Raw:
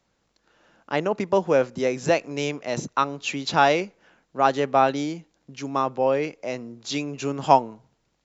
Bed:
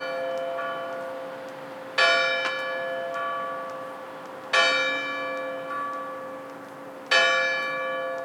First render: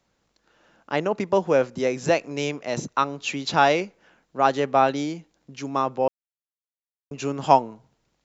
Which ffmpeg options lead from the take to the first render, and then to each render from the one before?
-filter_complex "[0:a]asplit=3[s0][s1][s2];[s0]atrim=end=6.08,asetpts=PTS-STARTPTS,afade=t=out:st=6.076:d=0.004:c=hsin[s3];[s1]atrim=start=6.08:end=7.11,asetpts=PTS-STARTPTS,volume=0[s4];[s2]atrim=start=7.11,asetpts=PTS-STARTPTS,afade=t=in:d=0.004:c=hsin[s5];[s3][s4][s5]concat=n=3:v=0:a=1"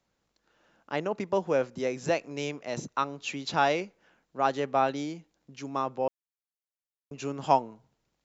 -af "volume=0.473"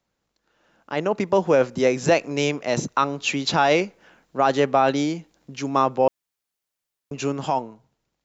-af "alimiter=limit=0.119:level=0:latency=1:release=12,dynaudnorm=f=180:g=11:m=3.55"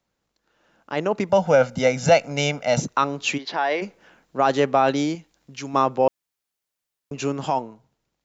-filter_complex "[0:a]asettb=1/sr,asplit=3[s0][s1][s2];[s0]atrim=end=1.294[s3];[s1]atrim=start=1.29:end=2.82,asetpts=PTS-STARTPTS,afade=t=in:d=0.004:c=qsin,afade=t=out:st=1.526:d=0.004:c=qsin,aecho=1:1:1.4:0.83,atrim=end_sample=67473[s4];[s2]atrim=start=2.816[s5];[s3][s4]acrossfade=d=0.004:c1=hsin:c2=qsin[s6];[s6][s5]acrossfade=d=0.004:c1=qsin:c2=hsin,asplit=3[s7][s8][s9];[s7]afade=t=out:st=3.37:d=0.02[s10];[s8]highpass=480,equalizer=f=530:t=q:w=4:g=-5,equalizer=f=810:t=q:w=4:g=-3,equalizer=f=1300:t=q:w=4:g=-9,equalizer=f=1800:t=q:w=4:g=3,equalizer=f=2600:t=q:w=4:g=-9,equalizer=f=3700:t=q:w=4:g=-7,lowpass=f=4100:w=0.5412,lowpass=f=4100:w=1.3066,afade=t=in:st=3.37:d=0.02,afade=t=out:st=3.81:d=0.02[s11];[s9]afade=t=in:st=3.81:d=0.02[s12];[s10][s11][s12]amix=inputs=3:normalize=0,asettb=1/sr,asplit=3[s13][s14][s15];[s13]atrim=end=5.154[s16];[s14]atrim=start=5.15:end=5.74,asetpts=PTS-STARTPTS,afade=t=in:d=0.004:c=qsin,afade=t=out:st=0.586:d=0.004:c=qsin,equalizer=f=320:w=0.38:g=-6.5[s17];[s15]atrim=start=5.736[s18];[s16][s17]acrossfade=d=0.004:c1=hsin:c2=qsin[s19];[s19][s18]acrossfade=d=0.004:c1=qsin:c2=hsin"

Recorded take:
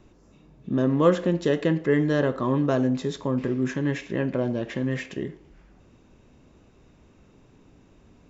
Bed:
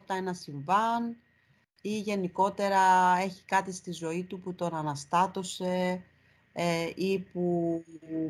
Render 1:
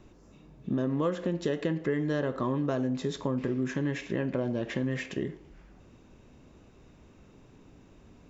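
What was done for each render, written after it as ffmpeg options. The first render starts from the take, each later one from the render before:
-af "acompressor=threshold=0.0501:ratio=5"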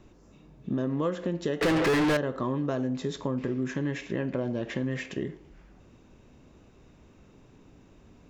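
-filter_complex "[0:a]asettb=1/sr,asplit=3[s0][s1][s2];[s0]atrim=end=1.614[s3];[s1]atrim=start=1.61:end=2.17,asetpts=PTS-STARTPTS,afade=t=in:d=0.004:c=qsin,afade=t=out:st=0.556:d=0.004:c=qsin,asplit=2[s4][s5];[s5]highpass=f=720:p=1,volume=112,asoftclip=type=tanh:threshold=0.133[s6];[s4][s6]amix=inputs=2:normalize=0,lowpass=f=3400:p=1,volume=0.501[s7];[s2]atrim=start=2.166[s8];[s3][s7]acrossfade=d=0.004:c1=hsin:c2=qsin[s9];[s9][s8]acrossfade=d=0.004:c1=qsin:c2=hsin"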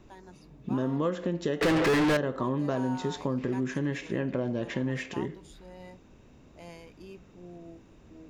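-filter_complex "[1:a]volume=0.119[s0];[0:a][s0]amix=inputs=2:normalize=0"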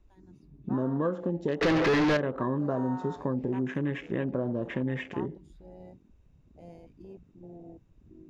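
-af "afwtdn=0.01"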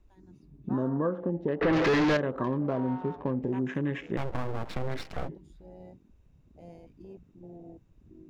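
-filter_complex "[0:a]asettb=1/sr,asplit=3[s0][s1][s2];[s0]atrim=end=0.884[s3];[s1]atrim=start=0.88:end=1.73,asetpts=PTS-STARTPTS,afade=t=in:d=0.004:c=qsin,afade=t=out:st=0.846:d=0.004:c=qsin,lowpass=2000[s4];[s2]atrim=start=1.726[s5];[s3][s4]acrossfade=d=0.004:c1=hsin:c2=qsin[s6];[s6][s5]acrossfade=d=0.004:c1=qsin:c2=hsin,asettb=1/sr,asplit=3[s7][s8][s9];[s7]atrim=end=2.444[s10];[s8]atrim=start=2.44:end=3.43,asetpts=PTS-STARTPTS,afade=t=in:d=0.004:c=qsin,afade=t=out:st=0.986:d=0.004:c=qsin,adynamicsmooth=sensitivity=4:basefreq=1200[s11];[s9]atrim=start=3.426[s12];[s10][s11]acrossfade=d=0.004:c1=hsin:c2=qsin[s13];[s13][s12]acrossfade=d=0.004:c1=qsin:c2=hsin,asettb=1/sr,asplit=3[s14][s15][s16];[s14]atrim=end=4.174[s17];[s15]atrim=start=4.17:end=5.29,asetpts=PTS-STARTPTS,afade=t=in:d=0.004:c=qsin,afade=t=out:st=1.116:d=0.004:c=qsin,aeval=exprs='abs(val(0))':c=same[s18];[s16]atrim=start=5.286[s19];[s17][s18]acrossfade=d=0.004:c1=hsin:c2=qsin[s20];[s20][s19]acrossfade=d=0.004:c1=qsin:c2=hsin"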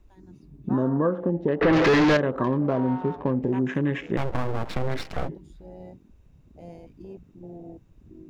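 -af "volume=1.88"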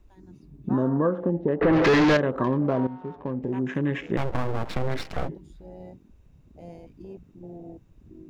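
-filter_complex "[0:a]asplit=3[s0][s1][s2];[s0]afade=t=out:st=1.4:d=0.02[s3];[s1]lowpass=f=1400:p=1,afade=t=in:st=1.4:d=0.02,afade=t=out:st=1.83:d=0.02[s4];[s2]afade=t=in:st=1.83:d=0.02[s5];[s3][s4][s5]amix=inputs=3:normalize=0,asplit=2[s6][s7];[s6]atrim=end=2.87,asetpts=PTS-STARTPTS,afade=t=out:st=2.866:d=0.004:c=hsin:silence=0.211349[s8];[s7]atrim=start=2.87,asetpts=PTS-STARTPTS,afade=t=in:d=1.14:silence=0.211349[s9];[s8][s9]concat=n=2:v=0:a=1"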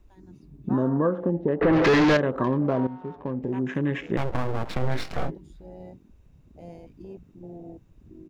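-filter_complex "[0:a]asplit=3[s0][s1][s2];[s0]afade=t=out:st=4.81:d=0.02[s3];[s1]asplit=2[s4][s5];[s5]adelay=24,volume=0.562[s6];[s4][s6]amix=inputs=2:normalize=0,afade=t=in:st=4.81:d=0.02,afade=t=out:st=5.3:d=0.02[s7];[s2]afade=t=in:st=5.3:d=0.02[s8];[s3][s7][s8]amix=inputs=3:normalize=0"

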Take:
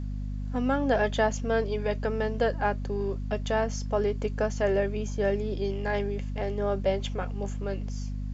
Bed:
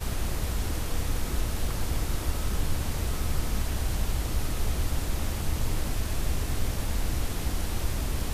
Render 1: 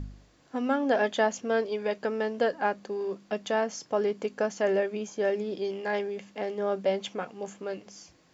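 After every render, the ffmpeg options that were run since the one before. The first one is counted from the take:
-af "bandreject=f=50:t=h:w=4,bandreject=f=100:t=h:w=4,bandreject=f=150:t=h:w=4,bandreject=f=200:t=h:w=4,bandreject=f=250:t=h:w=4"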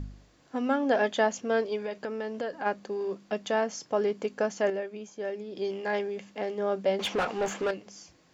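-filter_complex "[0:a]asplit=3[s0][s1][s2];[s0]afade=t=out:st=1.81:d=0.02[s3];[s1]acompressor=threshold=0.0282:ratio=3:attack=3.2:release=140:knee=1:detection=peak,afade=t=in:st=1.81:d=0.02,afade=t=out:st=2.65:d=0.02[s4];[s2]afade=t=in:st=2.65:d=0.02[s5];[s3][s4][s5]amix=inputs=3:normalize=0,asettb=1/sr,asplit=3[s6][s7][s8];[s6]atrim=end=6.994[s9];[s7]atrim=start=6.99:end=7.71,asetpts=PTS-STARTPTS,afade=t=in:d=0.004:c=qsin,afade=t=out:st=0.716:d=0.004:c=qsin,asplit=2[s10][s11];[s11]highpass=f=720:p=1,volume=17.8,asoftclip=type=tanh:threshold=0.112[s12];[s10][s12]amix=inputs=2:normalize=0,lowpass=f=2900:p=1,volume=0.501[s13];[s8]atrim=start=7.706[s14];[s9][s13]acrossfade=d=0.004:c1=hsin:c2=qsin[s15];[s15][s14]acrossfade=d=0.004:c1=qsin:c2=hsin,asplit=3[s16][s17][s18];[s16]atrim=end=4.702[s19];[s17]atrim=start=4.698:end=5.562,asetpts=PTS-STARTPTS,volume=0.447[s20];[s18]atrim=start=5.558[s21];[s19][s20]acrossfade=d=0.004:c1=hsin:c2=hsin[s22];[s22][s21]acrossfade=d=0.004:c1=hsin:c2=hsin"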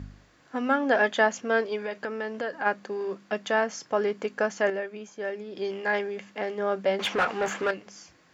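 -af "highpass=53,equalizer=f=1600:t=o:w=1.4:g=7.5"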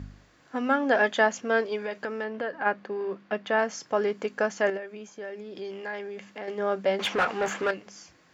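-filter_complex "[0:a]asettb=1/sr,asplit=3[s0][s1][s2];[s0]atrim=end=2.244[s3];[s1]atrim=start=2.24:end=3.59,asetpts=PTS-STARTPTS,afade=t=in:d=0.004:c=qsin,afade=t=out:st=1.346:d=0.004:c=qsin,lowpass=3300[s4];[s2]atrim=start=3.586[s5];[s3][s4]acrossfade=d=0.004:c1=hsin:c2=qsin[s6];[s6][s5]acrossfade=d=0.004:c1=qsin:c2=hsin,asettb=1/sr,asplit=3[s7][s8][s9];[s7]atrim=end=4.774[s10];[s8]atrim=start=4.77:end=6.48,asetpts=PTS-STARTPTS,afade=t=in:d=0.004:c=qsin,afade=t=out:st=1.706:d=0.004:c=qsin,acompressor=threshold=0.0141:ratio=2:attack=3.2:release=140:knee=1:detection=peak[s11];[s9]atrim=start=6.476[s12];[s10][s11]acrossfade=d=0.004:c1=hsin:c2=qsin[s13];[s13][s12]acrossfade=d=0.004:c1=qsin:c2=hsin"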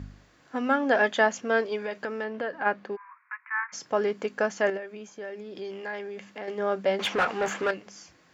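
-filter_complex "[0:a]asplit=3[s0][s1][s2];[s0]afade=t=out:st=2.95:d=0.02[s3];[s1]asuperpass=centerf=1500:order=20:qfactor=1,afade=t=in:st=2.95:d=0.02,afade=t=out:st=3.72:d=0.02[s4];[s2]afade=t=in:st=3.72:d=0.02[s5];[s3][s4][s5]amix=inputs=3:normalize=0"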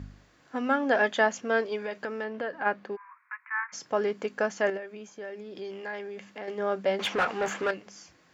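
-af "volume=0.841"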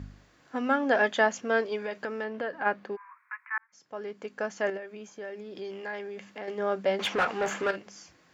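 -filter_complex "[0:a]asettb=1/sr,asplit=3[s0][s1][s2];[s0]atrim=end=7.414[s3];[s1]atrim=start=7.41:end=7.83,asetpts=PTS-STARTPTS,afade=t=in:d=0.004:c=qsin,afade=t=out:st=0.416:d=0.004:c=qsin,asplit=2[s4][s5];[s5]adelay=50,volume=0.224[s6];[s4][s6]amix=inputs=2:normalize=0,atrim=end_sample=18522[s7];[s2]atrim=start=7.826[s8];[s3][s7]acrossfade=d=0.004:c1=hsin:c2=qsin[s9];[s9][s8]acrossfade=d=0.004:c1=qsin:c2=hsin,asplit=2[s10][s11];[s10]atrim=end=3.58,asetpts=PTS-STARTPTS,afade=t=out:st=3.576:d=0.004:c=hsin[s12];[s11]atrim=start=3.58,asetpts=PTS-STARTPTS,afade=t=in:d=1.45[s13];[s12][s13]concat=n=2:v=0:a=1"

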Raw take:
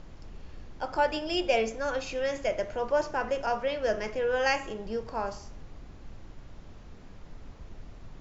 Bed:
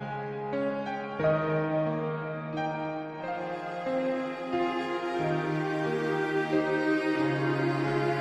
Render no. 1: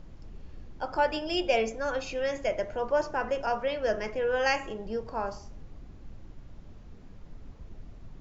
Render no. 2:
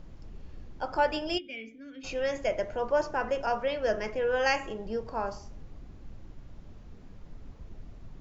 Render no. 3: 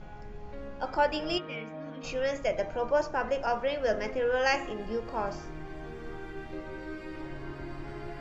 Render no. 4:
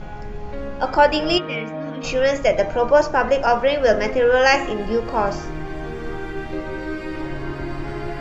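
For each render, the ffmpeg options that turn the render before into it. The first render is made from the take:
-af "afftdn=nr=6:nf=-49"
-filter_complex "[0:a]asplit=3[s0][s1][s2];[s0]afade=t=out:st=1.37:d=0.02[s3];[s1]asplit=3[s4][s5][s6];[s4]bandpass=f=270:t=q:w=8,volume=1[s7];[s5]bandpass=f=2290:t=q:w=8,volume=0.501[s8];[s6]bandpass=f=3010:t=q:w=8,volume=0.355[s9];[s7][s8][s9]amix=inputs=3:normalize=0,afade=t=in:st=1.37:d=0.02,afade=t=out:st=2.03:d=0.02[s10];[s2]afade=t=in:st=2.03:d=0.02[s11];[s3][s10][s11]amix=inputs=3:normalize=0"
-filter_complex "[1:a]volume=0.2[s0];[0:a][s0]amix=inputs=2:normalize=0"
-af "volume=3.98,alimiter=limit=0.794:level=0:latency=1"

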